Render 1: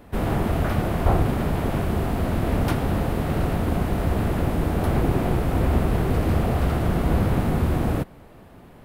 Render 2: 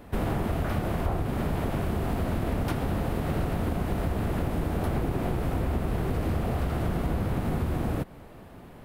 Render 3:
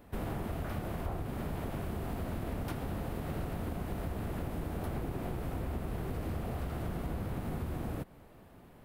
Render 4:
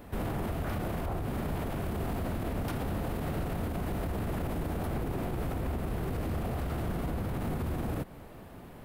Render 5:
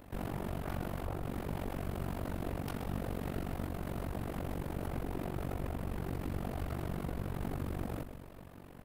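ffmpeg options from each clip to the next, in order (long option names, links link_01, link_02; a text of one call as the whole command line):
ffmpeg -i in.wav -af "acompressor=threshold=-24dB:ratio=6" out.wav
ffmpeg -i in.wav -af "highshelf=frequency=11000:gain=6,volume=-9dB" out.wav
ffmpeg -i in.wav -af "alimiter=level_in=9.5dB:limit=-24dB:level=0:latency=1:release=29,volume=-9.5dB,volume=8dB" out.wav
ffmpeg -i in.wav -filter_complex "[0:a]asplit=8[link_01][link_02][link_03][link_04][link_05][link_06][link_07][link_08];[link_02]adelay=130,afreqshift=-49,volume=-12dB[link_09];[link_03]adelay=260,afreqshift=-98,volume=-16dB[link_10];[link_04]adelay=390,afreqshift=-147,volume=-20dB[link_11];[link_05]adelay=520,afreqshift=-196,volume=-24dB[link_12];[link_06]adelay=650,afreqshift=-245,volume=-28.1dB[link_13];[link_07]adelay=780,afreqshift=-294,volume=-32.1dB[link_14];[link_08]adelay=910,afreqshift=-343,volume=-36.1dB[link_15];[link_01][link_09][link_10][link_11][link_12][link_13][link_14][link_15]amix=inputs=8:normalize=0,tremolo=f=47:d=0.919,volume=-1.5dB" out.wav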